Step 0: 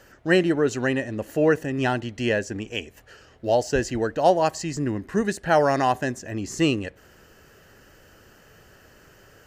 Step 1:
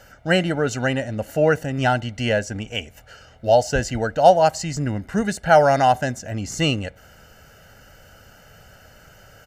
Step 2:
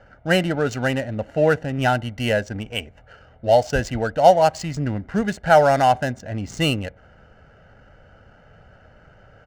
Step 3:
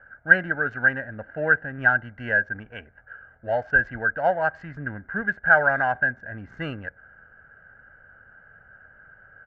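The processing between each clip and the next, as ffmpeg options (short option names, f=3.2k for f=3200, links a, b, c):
-af "aecho=1:1:1.4:0.65,volume=2.5dB"
-af "adynamicsmooth=sensitivity=5.5:basefreq=1.7k"
-af "lowpass=f=1.6k:t=q:w=15,volume=-11dB"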